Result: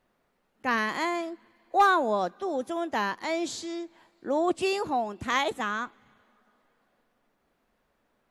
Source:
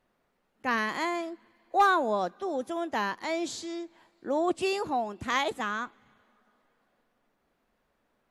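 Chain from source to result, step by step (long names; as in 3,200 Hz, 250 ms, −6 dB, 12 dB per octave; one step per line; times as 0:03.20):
0:05.27–0:05.77: notch filter 4,800 Hz, Q 12
level +1.5 dB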